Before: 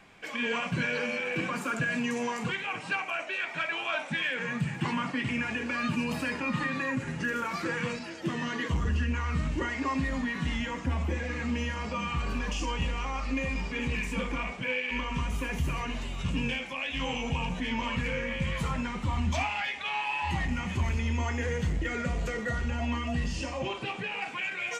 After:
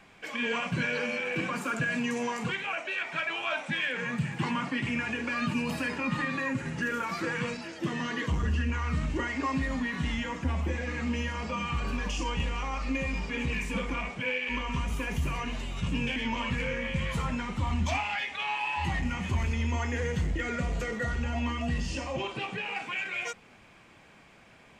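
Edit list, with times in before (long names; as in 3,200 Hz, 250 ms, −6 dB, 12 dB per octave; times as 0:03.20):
0:02.73–0:03.15: remove
0:16.58–0:17.62: remove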